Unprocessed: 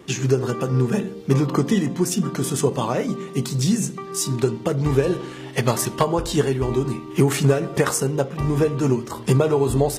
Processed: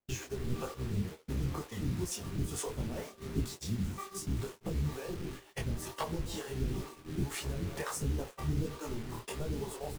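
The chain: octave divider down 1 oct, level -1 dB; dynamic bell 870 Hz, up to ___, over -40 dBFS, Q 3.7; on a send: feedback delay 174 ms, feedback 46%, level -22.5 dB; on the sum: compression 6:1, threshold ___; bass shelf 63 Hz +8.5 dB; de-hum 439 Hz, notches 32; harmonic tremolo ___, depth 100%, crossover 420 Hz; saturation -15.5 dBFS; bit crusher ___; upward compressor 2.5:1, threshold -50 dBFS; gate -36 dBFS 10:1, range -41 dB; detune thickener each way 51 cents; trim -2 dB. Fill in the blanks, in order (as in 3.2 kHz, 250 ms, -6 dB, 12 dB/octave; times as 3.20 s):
+3 dB, -23 dBFS, 2.1 Hz, 7-bit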